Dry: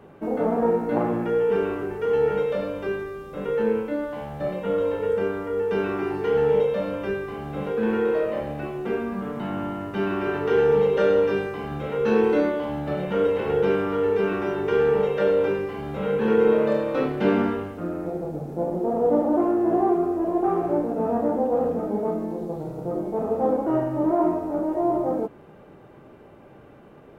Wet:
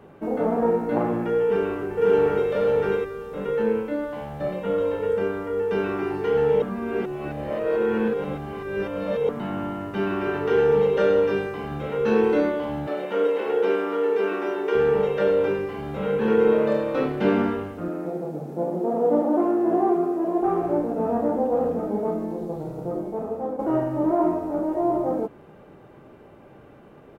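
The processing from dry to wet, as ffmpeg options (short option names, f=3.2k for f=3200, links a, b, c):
-filter_complex "[0:a]asplit=2[a][b];[b]afade=t=in:st=1.43:d=0.01,afade=t=out:st=2.5:d=0.01,aecho=0:1:540|1080|1620:0.841395|0.126209|0.0189314[c];[a][c]amix=inputs=2:normalize=0,asettb=1/sr,asplit=3[d][e][f];[d]atrim=end=12.874[g];[e]atrim=start=12.87:end=14.75,asetpts=PTS-STARTPTS,afade=t=in:d=0.004:c=qsin,afade=t=out:st=1.876:d=0.004:c=qsin,highpass=f=270:w=0.5412,highpass=f=270:w=1.3066[h];[f]atrim=start=14.746[i];[g][h]acrossfade=d=0.004:c1=hsin:c2=qsin[j];[j][i]acrossfade=d=0.004:c1=qsin:c2=hsin,asettb=1/sr,asplit=3[k][l][m];[k]atrim=end=17.884[n];[l]atrim=start=17.88:end=20.42,asetpts=PTS-STARTPTS,afade=t=in:d=0.004:c=qsin,afade=t=out:st=2.536:d=0.004:c=qsin,highpass=f=140:w=0.5412,highpass=f=140:w=1.3066[o];[m]atrim=start=20.416[p];[n][o]acrossfade=d=0.004:c1=hsin:c2=qsin[q];[q][p]acrossfade=d=0.004:c1=qsin:c2=hsin,asplit=4[r][s][t][u];[r]atrim=end=6.622[v];[s]atrim=start=6.618:end=9.292,asetpts=PTS-STARTPTS,areverse[w];[t]atrim=start=9.288:end=23.59,asetpts=PTS-STARTPTS,afade=t=out:st=13.532:d=0.77:silence=0.334965[x];[u]atrim=start=23.59,asetpts=PTS-STARTPTS,afade=t=in:d=0.004:c=hsin:silence=0.334965[y];[v][w]acrossfade=d=0.004:c1=hsin:c2=hsin[z];[x][y]concat=n=2:v=0:a=1[aa];[z][aa]acrossfade=d=0.004:c1=hsin:c2=hsin"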